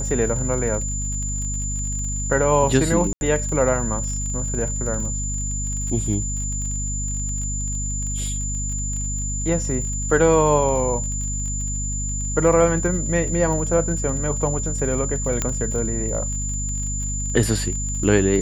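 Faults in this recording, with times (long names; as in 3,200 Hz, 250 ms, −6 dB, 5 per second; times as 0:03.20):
surface crackle 36 per second −29 dBFS
mains hum 50 Hz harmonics 5 −27 dBFS
whistle 7,100 Hz −27 dBFS
0:03.13–0:03.21: drop-out 81 ms
0:15.42: click −7 dBFS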